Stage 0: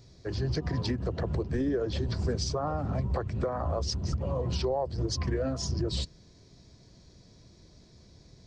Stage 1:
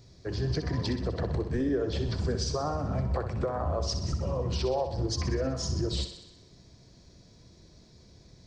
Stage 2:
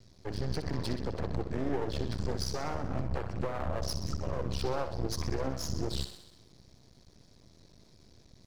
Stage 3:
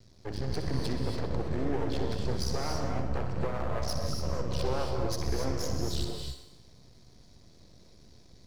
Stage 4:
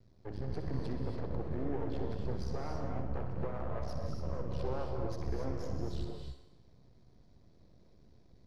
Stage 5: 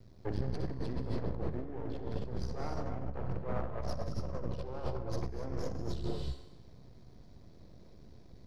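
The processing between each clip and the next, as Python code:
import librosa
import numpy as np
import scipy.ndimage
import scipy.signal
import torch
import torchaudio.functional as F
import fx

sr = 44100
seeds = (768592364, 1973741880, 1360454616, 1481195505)

y1 = fx.echo_thinned(x, sr, ms=63, feedback_pct=63, hz=180.0, wet_db=-9)
y2 = np.maximum(y1, 0.0)
y3 = fx.rev_gated(y2, sr, seeds[0], gate_ms=310, shape='rising', drr_db=2.5)
y4 = fx.lowpass(y3, sr, hz=1200.0, slope=6)
y4 = F.gain(torch.from_numpy(y4), -5.0).numpy()
y5 = fx.over_compress(y4, sr, threshold_db=-37.0, ratio=-0.5)
y5 = F.gain(torch.from_numpy(y5), 3.5).numpy()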